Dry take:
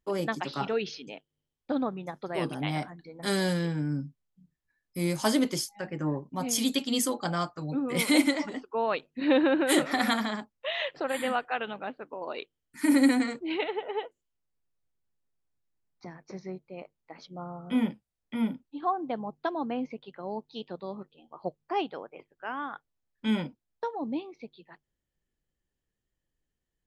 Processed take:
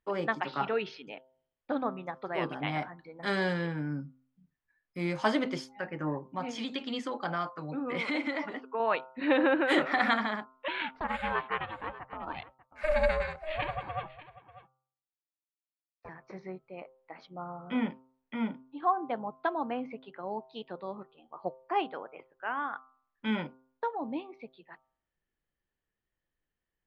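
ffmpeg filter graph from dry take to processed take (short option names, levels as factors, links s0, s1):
-filter_complex "[0:a]asettb=1/sr,asplit=3[s0][s1][s2];[s0]atrim=end=6.304[s3];[s1]atrim=start=6.3:end=8.8,asetpts=PTS-STARTPTS,afade=t=in:d=0.004:c=qsin,afade=t=out:st=2.496:d=0.004:c=qsin,acompressor=threshold=0.0447:ratio=3:attack=3.2:release=140:knee=1:detection=peak,highpass=120,lowpass=7200[s4];[s2]atrim=start=8.796[s5];[s3][s4]acrossfade=d=0.004:c1=hsin:c2=qsin[s6];[s6][s5]acrossfade=d=0.004:c1=qsin:c2=hsin,asettb=1/sr,asplit=3[s7][s8][s9];[s7]atrim=end=10.684[s10];[s8]atrim=start=10.68:end=16.09,asetpts=PTS-STARTPTS,afade=t=in:d=0.004:c=qsin,afade=t=out:st=5.406:d=0.004:c=qsin,agate=range=0.0224:threshold=0.00501:ratio=3:release=100:detection=peak,aeval=exprs='val(0)*sin(2*PI*310*n/s)':c=same,aecho=1:1:592:0.141,atrim=end_sample=238581[s11];[s9]atrim=start=16.086[s12];[s10][s11]acrossfade=d=0.004:c1=hsin:c2=qsin[s13];[s13][s12]acrossfade=d=0.004:c1=qsin:c2=hsin,lowpass=2100,tiltshelf=f=640:g=-5.5,bandreject=f=130.4:t=h:w=4,bandreject=f=260.8:t=h:w=4,bandreject=f=391.2:t=h:w=4,bandreject=f=521.6:t=h:w=4,bandreject=f=652:t=h:w=4,bandreject=f=782.4:t=h:w=4,bandreject=f=912.8:t=h:w=4,bandreject=f=1043.2:t=h:w=4,bandreject=f=1173.6:t=h:w=4,bandreject=f=1304:t=h:w=4,bandreject=f=1434.4:t=h:w=4"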